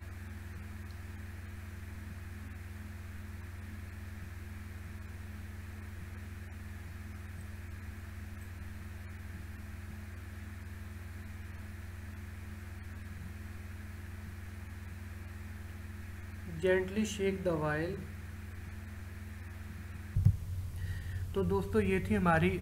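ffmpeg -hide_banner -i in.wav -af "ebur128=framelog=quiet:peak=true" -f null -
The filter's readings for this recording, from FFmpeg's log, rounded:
Integrated loudness:
  I:         -39.5 LUFS
  Threshold: -49.5 LUFS
Loudness range:
  LRA:        10.4 LU
  Threshold: -60.8 LUFS
  LRA low:   -46.3 LUFS
  LRA high:  -35.9 LUFS
True peak:
  Peak:      -13.4 dBFS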